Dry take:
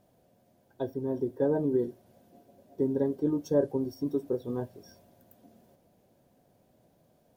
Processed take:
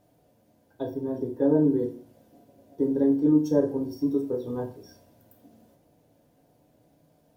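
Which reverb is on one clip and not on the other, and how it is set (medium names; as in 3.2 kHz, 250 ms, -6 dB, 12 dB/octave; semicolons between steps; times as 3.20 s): FDN reverb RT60 0.43 s, low-frequency decay 1.2×, high-frequency decay 0.9×, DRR 2 dB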